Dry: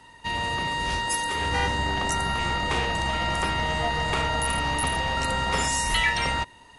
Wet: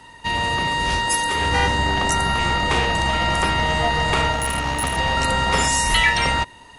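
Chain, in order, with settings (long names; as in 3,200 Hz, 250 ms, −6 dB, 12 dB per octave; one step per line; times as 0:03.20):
0:04.32–0:04.98: tube saturation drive 18 dB, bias 0.5
level +6 dB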